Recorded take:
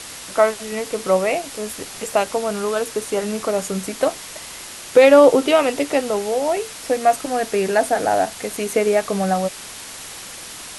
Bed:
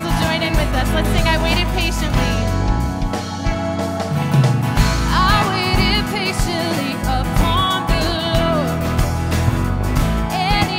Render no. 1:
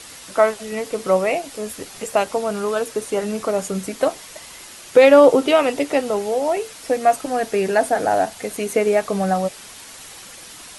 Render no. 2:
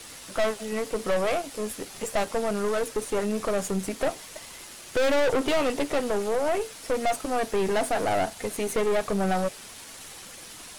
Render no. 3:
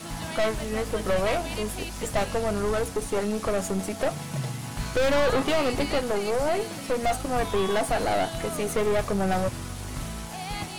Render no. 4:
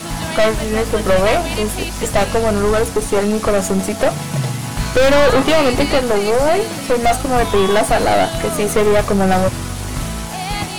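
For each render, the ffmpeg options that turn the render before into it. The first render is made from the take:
ffmpeg -i in.wav -af "afftdn=noise_reduction=6:noise_floor=-36" out.wav
ffmpeg -i in.wav -filter_complex "[0:a]aeval=exprs='(tanh(11.2*val(0)+0.5)-tanh(0.5))/11.2':channel_layout=same,acrossover=split=570[link_01][link_02];[link_02]aeval=exprs='sgn(val(0))*max(abs(val(0))-0.00224,0)':channel_layout=same[link_03];[link_01][link_03]amix=inputs=2:normalize=0" out.wav
ffmpeg -i in.wav -i bed.wav -filter_complex "[1:a]volume=-17.5dB[link_01];[0:a][link_01]amix=inputs=2:normalize=0" out.wav
ffmpeg -i in.wav -af "volume=11dB,alimiter=limit=-2dB:level=0:latency=1" out.wav

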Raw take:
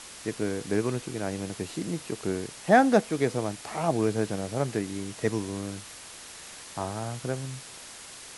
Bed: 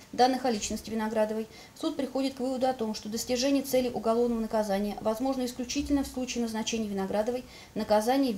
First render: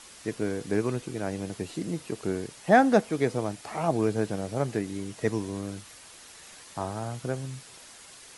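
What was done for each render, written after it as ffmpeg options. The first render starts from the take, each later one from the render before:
ffmpeg -i in.wav -af "afftdn=noise_reduction=6:noise_floor=-45" out.wav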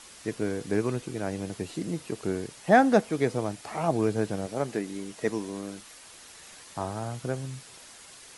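ffmpeg -i in.wav -filter_complex "[0:a]asettb=1/sr,asplit=3[link_01][link_02][link_03];[link_01]atrim=end=4.464[link_04];[link_02]atrim=start=4.46:end=6.07,asetpts=PTS-STARTPTS,afade=type=in:duration=0.004:curve=qsin,afade=type=out:start_time=1.606:duration=0.004:curve=qsin,equalizer=frequency=95:width=1.5:gain=-13.5[link_05];[link_03]atrim=start=6.066[link_06];[link_04][link_05]acrossfade=duration=0.004:curve1=hsin:curve2=qsin[link_07];[link_07][link_06]acrossfade=duration=0.004:curve1=qsin:curve2=hsin" out.wav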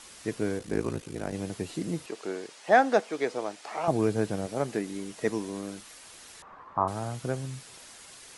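ffmpeg -i in.wav -filter_complex "[0:a]asettb=1/sr,asplit=3[link_01][link_02][link_03];[link_01]atrim=end=0.584[link_04];[link_02]atrim=start=0.58:end=1.34,asetpts=PTS-STARTPTS,afade=type=in:duration=0.004:curve=qsin,afade=type=out:start_time=0.756:duration=0.004:curve=qsin,aeval=exprs='val(0)*sin(2*PI*27*n/s)':channel_layout=same[link_05];[link_03]atrim=start=1.336[link_06];[link_04][link_05]acrossfade=duration=0.004:curve1=hsin:curve2=qsin[link_07];[link_07][link_06]acrossfade=duration=0.004:curve1=qsin:curve2=hsin,asettb=1/sr,asplit=3[link_08][link_09][link_10];[link_08]atrim=end=2.064[link_11];[link_09]atrim=start=2.06:end=3.88,asetpts=PTS-STARTPTS,afade=type=in:duration=0.004:curve=qsin,afade=type=out:start_time=1.816:duration=0.004:curve=qsin,highpass=400,lowpass=7400[link_12];[link_10]atrim=start=3.876[link_13];[link_11][link_12]acrossfade=duration=0.004:curve1=hsin:curve2=qsin[link_14];[link_14][link_13]acrossfade=duration=0.004:curve1=qsin:curve2=hsin,asettb=1/sr,asplit=3[link_15][link_16][link_17];[link_15]atrim=end=6.424[link_18];[link_16]atrim=start=6.42:end=6.88,asetpts=PTS-STARTPTS,afade=type=in:duration=0.004:curve=qsin,afade=type=out:start_time=0.456:duration=0.004:curve=qsin,lowpass=frequency=1100:width_type=q:width=4.9[link_19];[link_17]atrim=start=6.876[link_20];[link_18][link_19]acrossfade=duration=0.004:curve1=hsin:curve2=qsin[link_21];[link_21][link_20]acrossfade=duration=0.004:curve1=qsin:curve2=hsin" out.wav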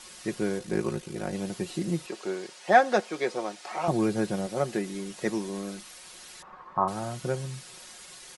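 ffmpeg -i in.wav -af "equalizer=frequency=4300:width=1.5:gain=2,aecho=1:1:5.5:0.6" out.wav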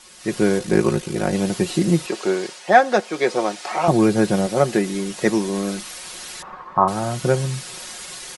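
ffmpeg -i in.wav -af "dynaudnorm=framelen=190:gausssize=3:maxgain=12dB" out.wav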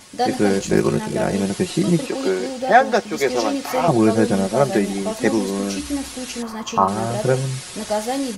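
ffmpeg -i in.wav -i bed.wav -filter_complex "[1:a]volume=2dB[link_01];[0:a][link_01]amix=inputs=2:normalize=0" out.wav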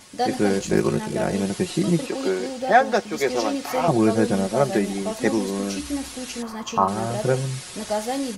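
ffmpeg -i in.wav -af "volume=-3dB" out.wav

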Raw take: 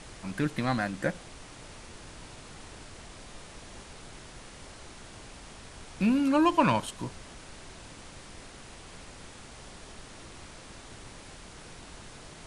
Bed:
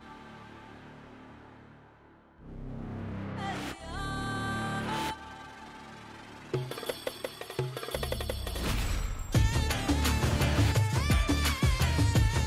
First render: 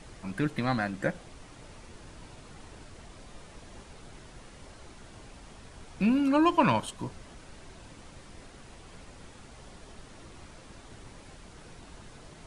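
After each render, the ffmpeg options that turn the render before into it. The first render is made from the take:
ffmpeg -i in.wav -af "afftdn=noise_reduction=6:noise_floor=-48" out.wav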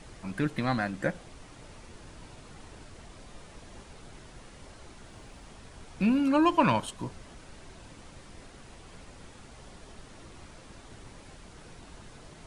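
ffmpeg -i in.wav -filter_complex "[0:a]asettb=1/sr,asplit=3[link_01][link_02][link_03];[link_01]atrim=end=5.074[link_04];[link_02]atrim=start=5.07:end=5.47,asetpts=PTS-STARTPTS,afade=type=in:duration=0.004:curve=qsin,afade=type=out:start_time=0.396:duration=0.004:curve=qsin,acrusher=bits=9:mode=log:mix=0:aa=0.000001[link_05];[link_03]atrim=start=5.466[link_06];[link_04][link_05]acrossfade=duration=0.004:curve1=hsin:curve2=qsin[link_07];[link_07][link_06]acrossfade=duration=0.004:curve1=qsin:curve2=hsin" out.wav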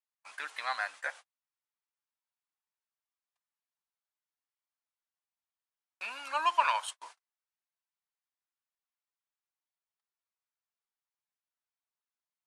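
ffmpeg -i in.wav -af "agate=range=-46dB:threshold=-38dB:ratio=16:detection=peak,highpass=frequency=850:width=0.5412,highpass=frequency=850:width=1.3066" out.wav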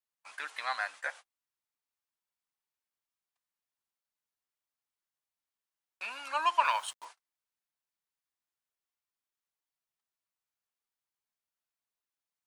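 ffmpeg -i in.wav -filter_complex "[0:a]asettb=1/sr,asplit=3[link_01][link_02][link_03];[link_01]atrim=end=6.654[link_04];[link_02]atrim=start=6.65:end=7.05,asetpts=PTS-STARTPTS,afade=type=in:duration=0.004:curve=qsin,afade=type=out:start_time=0.396:duration=0.004:curve=qsin,acrusher=bits=8:mix=0:aa=0.5[link_05];[link_03]atrim=start=7.046[link_06];[link_04][link_05]acrossfade=duration=0.004:curve1=hsin:curve2=qsin[link_07];[link_07][link_06]acrossfade=duration=0.004:curve1=qsin:curve2=hsin" out.wav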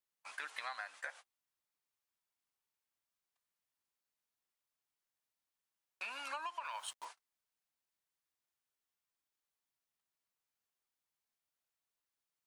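ffmpeg -i in.wav -af "alimiter=limit=-23dB:level=0:latency=1:release=164,acompressor=threshold=-40dB:ratio=6" out.wav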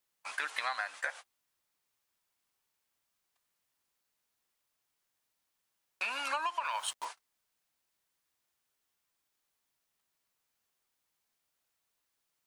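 ffmpeg -i in.wav -af "volume=8.5dB" out.wav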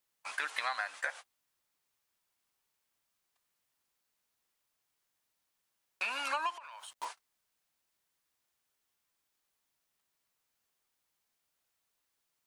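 ffmpeg -i in.wav -filter_complex "[0:a]asettb=1/sr,asplit=3[link_01][link_02][link_03];[link_01]atrim=end=6.554[link_04];[link_02]atrim=start=6.55:end=6.98,asetpts=PTS-STARTPTS,afade=type=in:duration=0.004:curve=qsin,afade=type=out:start_time=0.426:duration=0.004:curve=qsin,acompressor=threshold=-45dB:ratio=12:attack=3.2:release=140:knee=1:detection=peak[link_05];[link_03]atrim=start=6.976[link_06];[link_04][link_05]acrossfade=duration=0.004:curve1=hsin:curve2=qsin[link_07];[link_07][link_06]acrossfade=duration=0.004:curve1=qsin:curve2=hsin" out.wav

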